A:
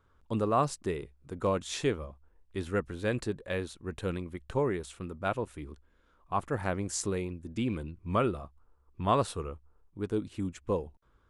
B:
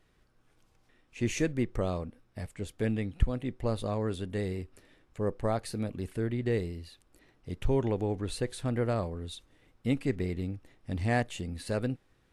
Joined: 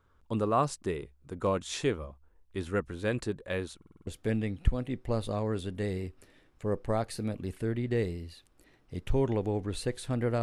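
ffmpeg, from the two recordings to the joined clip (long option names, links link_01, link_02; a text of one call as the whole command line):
ffmpeg -i cue0.wav -i cue1.wav -filter_complex "[0:a]apad=whole_dur=10.42,atrim=end=10.42,asplit=6[link_01][link_02][link_03][link_04][link_05][link_06];[link_01]atrim=end=3.822[link_07];[link_02]atrim=start=3.768:end=3.822[link_08];[link_03]atrim=start=3.768:end=3.822[link_09];[link_04]atrim=start=3.768:end=3.822[link_10];[link_05]atrim=start=3.768:end=3.822[link_11];[link_06]atrim=start=3.768:end=3.822[link_12];[1:a]atrim=start=2.618:end=8.97[link_13];[link_07][link_08]acrossfade=duration=0.004:curve1=hsin:curve2=hsin[link_14];[link_14][link_09]acrossfade=duration=0.004:curve1=hsin:curve2=hsin[link_15];[link_15][link_10]acrossfade=duration=0.004:curve1=hsin:curve2=hsin[link_16];[link_16][link_11]acrossfade=duration=0.004:curve1=hsin:curve2=hsin[link_17];[link_17][link_12]acrossfade=duration=0.004:curve1=hsin:curve2=hsin[link_18];[link_18][link_13]acrossfade=duration=0.004:curve1=hsin:curve2=hsin" out.wav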